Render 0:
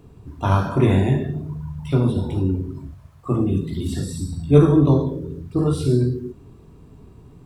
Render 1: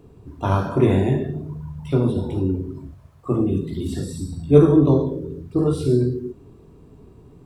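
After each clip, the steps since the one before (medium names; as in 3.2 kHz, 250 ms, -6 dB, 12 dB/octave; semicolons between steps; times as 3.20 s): peaking EQ 420 Hz +5.5 dB 1.5 oct; trim -3 dB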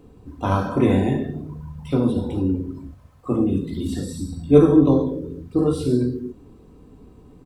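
comb 3.9 ms, depth 41%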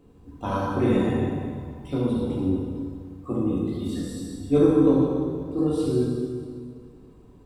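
plate-style reverb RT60 2 s, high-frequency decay 0.85×, DRR -2.5 dB; trim -7.5 dB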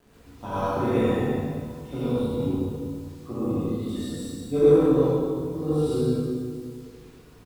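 speakerphone echo 80 ms, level -7 dB; bit crusher 9-bit; gated-style reverb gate 160 ms rising, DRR -6.5 dB; trim -7.5 dB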